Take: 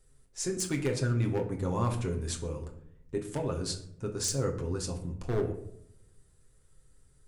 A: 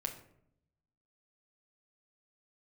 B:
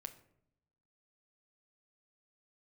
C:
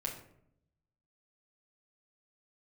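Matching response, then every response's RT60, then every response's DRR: A; 0.70, 0.75, 0.70 seconds; 2.0, 6.5, −3.0 decibels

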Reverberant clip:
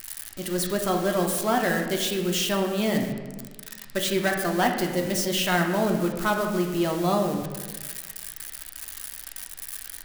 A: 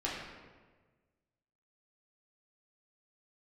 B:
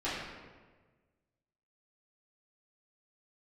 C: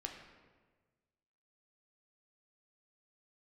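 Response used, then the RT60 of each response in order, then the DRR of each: C; 1.4, 1.4, 1.4 seconds; −7.0, −13.0, 1.5 decibels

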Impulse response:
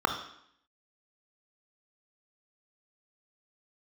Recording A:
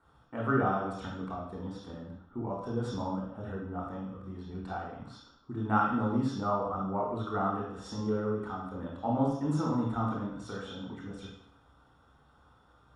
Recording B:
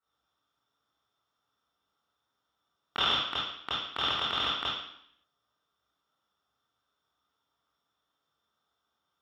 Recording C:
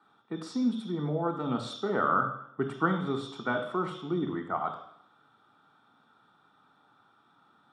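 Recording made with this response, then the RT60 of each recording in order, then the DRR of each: C; 0.70, 0.70, 0.70 seconds; −2.5, −8.0, 5.5 decibels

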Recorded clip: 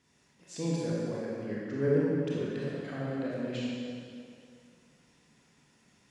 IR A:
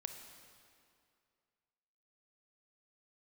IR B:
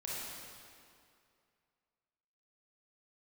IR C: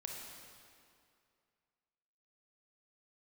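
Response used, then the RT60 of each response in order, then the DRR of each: B; 2.4, 2.4, 2.4 seconds; 6.0, −6.5, 0.0 decibels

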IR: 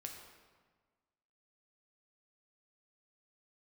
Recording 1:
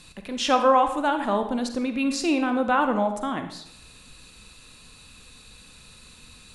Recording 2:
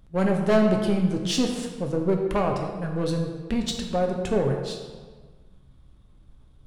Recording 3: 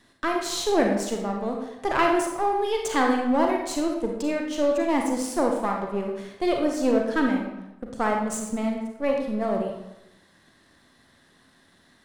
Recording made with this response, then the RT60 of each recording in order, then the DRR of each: 2; 0.70, 1.5, 0.95 seconds; 7.0, 1.5, 1.0 decibels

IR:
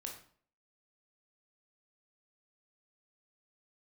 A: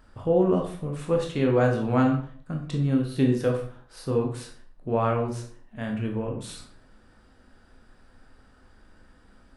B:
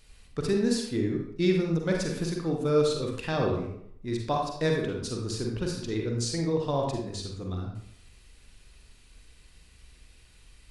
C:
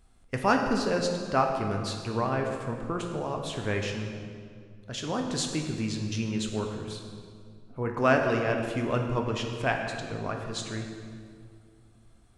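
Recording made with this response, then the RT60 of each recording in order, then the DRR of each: A; 0.50, 0.70, 2.2 seconds; 0.5, 0.0, 2.0 decibels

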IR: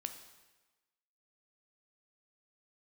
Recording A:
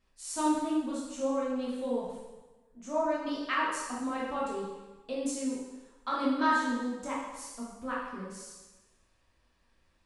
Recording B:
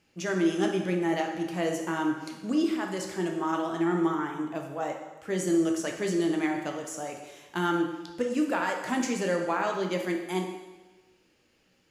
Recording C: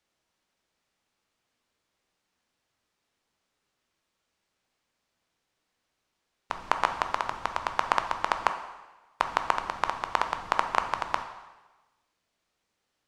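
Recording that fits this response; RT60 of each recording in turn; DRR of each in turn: C; 1.2, 1.2, 1.2 seconds; −6.5, 2.0, 6.5 decibels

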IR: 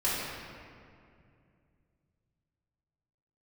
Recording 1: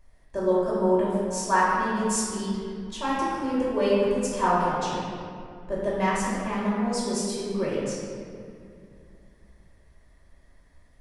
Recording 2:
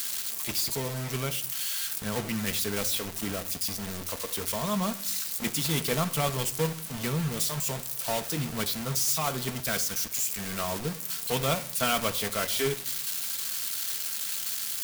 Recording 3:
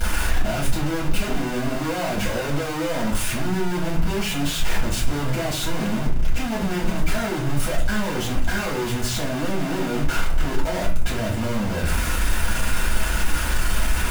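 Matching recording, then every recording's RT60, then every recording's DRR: 1; 2.4, 0.55, 0.40 seconds; −9.5, 7.5, −5.5 decibels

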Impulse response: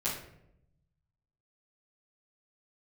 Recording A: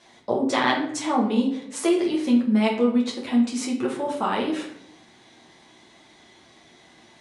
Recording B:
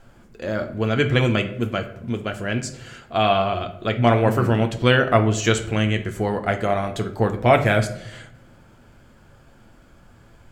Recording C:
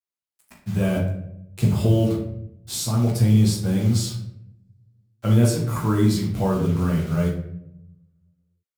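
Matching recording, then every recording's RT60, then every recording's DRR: C; 0.75, 0.80, 0.75 seconds; −3.5, 5.5, −12.5 decibels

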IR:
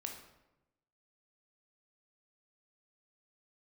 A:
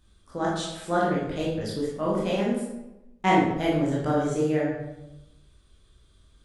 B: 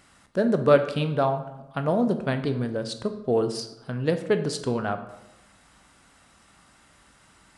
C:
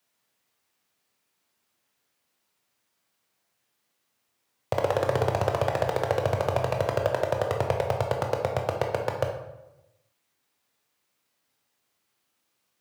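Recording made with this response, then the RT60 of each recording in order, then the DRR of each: C; 0.95, 0.95, 0.95 seconds; −6.0, 8.0, 2.0 decibels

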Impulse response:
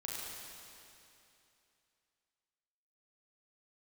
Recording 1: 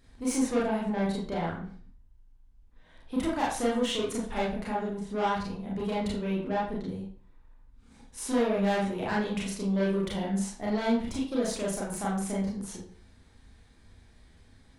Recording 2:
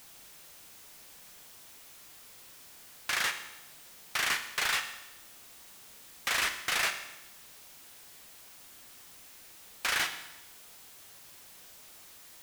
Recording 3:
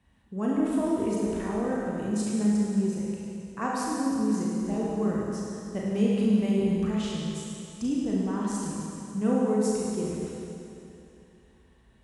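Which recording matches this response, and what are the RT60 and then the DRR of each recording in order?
3; 0.45, 0.95, 2.8 seconds; −5.5, 7.0, −5.0 decibels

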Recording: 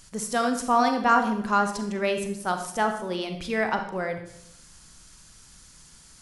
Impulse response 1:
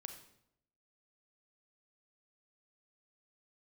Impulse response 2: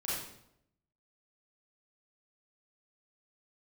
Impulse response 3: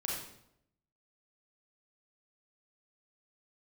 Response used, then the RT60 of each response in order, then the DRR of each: 1; 0.75, 0.75, 0.75 seconds; 5.5, −9.0, −4.0 decibels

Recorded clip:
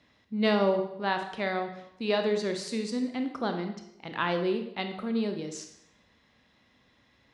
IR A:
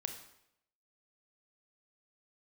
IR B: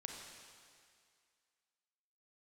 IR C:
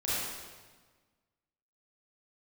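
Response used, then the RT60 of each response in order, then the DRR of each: A; 0.75, 2.1, 1.4 seconds; 5.5, 1.0, −10.0 decibels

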